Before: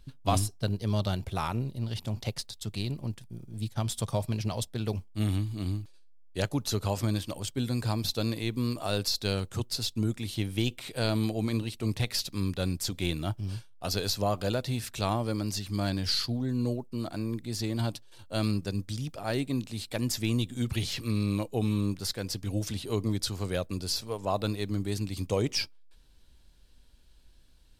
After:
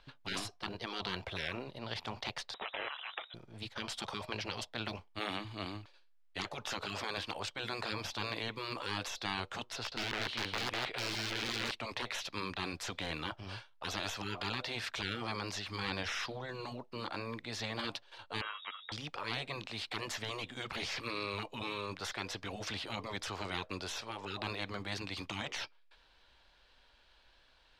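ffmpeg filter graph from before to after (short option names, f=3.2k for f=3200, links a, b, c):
-filter_complex "[0:a]asettb=1/sr,asplit=3[a][b][c];[a]atrim=end=2.544[d];[b]atrim=start=2.54:end=3.34,asetpts=PTS-STARTPTS,afade=t=in:d=0.004:c=qsin,afade=t=out:st=0.796:d=0.004:c=qsin,aeval=exprs='0.112*sin(PI/2*2.51*val(0)/0.112)':c=same,acompressor=mode=upward:threshold=-30dB:ratio=2.5:attack=3.2:release=140:knee=2.83:detection=peak,lowpass=f=3.3k:t=q:w=0.5098,lowpass=f=3.3k:t=q:w=0.6013,lowpass=f=3.3k:t=q:w=0.9,lowpass=f=3.3k:t=q:w=2.563,afreqshift=-3900[e];[c]atrim=start=3.336[f];[d][e]acrossfade=d=0.004:c1=hsin:c2=qsin[g];[g][f]acrossfade=d=0.004:c1=qsin:c2=hsin,asettb=1/sr,asplit=3[h][i][j];[h]atrim=end=9.764[k];[i]atrim=start=9.76:end=11.71,asetpts=PTS-STARTPTS,afade=t=in:d=0.004:c=qsin,afade=t=out:st=1.946:d=0.004:c=qsin,highshelf=f=4.8k:g=-11,aeval=exprs='(mod(16.8*val(0)+1,2)-1)/16.8':c=same,aecho=1:1:157:0.668,atrim=end_sample=85995[l];[j]atrim=start=11.706[m];[k][l]acrossfade=d=0.004:c1=hsin:c2=qsin[n];[n][m]acrossfade=d=0.004:c1=qsin:c2=hsin,asettb=1/sr,asplit=3[o][p][q];[o]atrim=end=18.414[r];[p]atrim=start=18.41:end=18.92,asetpts=PTS-STARTPTS,afade=t=in:d=0.004:c=qsin,afade=t=out:st=0.506:d=0.004:c=qsin,asuperstop=centerf=1300:order=4:qfactor=7,lowpass=f=3.2k:t=q:w=0.5098,lowpass=f=3.2k:t=q:w=0.6013,lowpass=f=3.2k:t=q:w=0.9,lowpass=f=3.2k:t=q:w=2.563,afreqshift=-3800[s];[q]atrim=start=18.916[t];[r][s]acrossfade=d=0.004:c1=hsin:c2=qsin[u];[u][t]acrossfade=d=0.004:c1=qsin:c2=hsin,acrossover=split=580 5000:gain=0.0708 1 0.1[v][w][x];[v][w][x]amix=inputs=3:normalize=0,afftfilt=real='re*lt(hypot(re,im),0.0224)':imag='im*lt(hypot(re,im),0.0224)':win_size=1024:overlap=0.75,highshelf=f=3.5k:g=-10,volume=10.5dB"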